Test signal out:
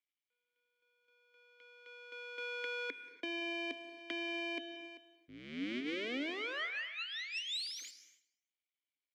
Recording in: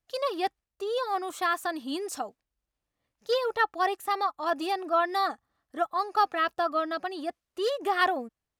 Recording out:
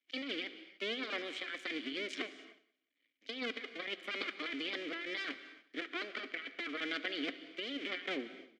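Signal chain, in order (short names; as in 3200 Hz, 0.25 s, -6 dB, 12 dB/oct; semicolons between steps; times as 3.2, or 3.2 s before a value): cycle switcher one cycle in 2, muted; vowel filter i; three-band isolator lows -24 dB, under 430 Hz, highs -17 dB, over 6800 Hz; negative-ratio compressor -56 dBFS, ratio -1; feedback echo 0.183 s, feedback 27%, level -21.5 dB; non-linear reverb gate 0.32 s flat, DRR 11.5 dB; gain +16 dB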